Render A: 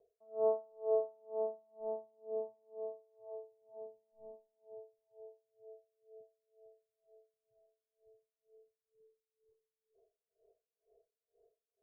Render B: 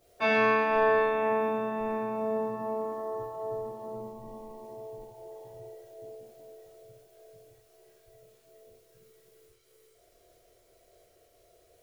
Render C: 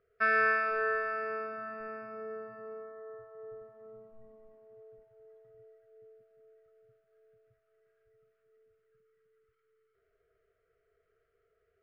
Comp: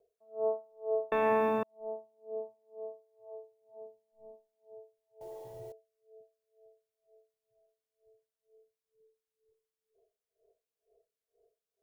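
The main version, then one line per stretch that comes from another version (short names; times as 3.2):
A
1.12–1.63 from B
5.21–5.72 from B
not used: C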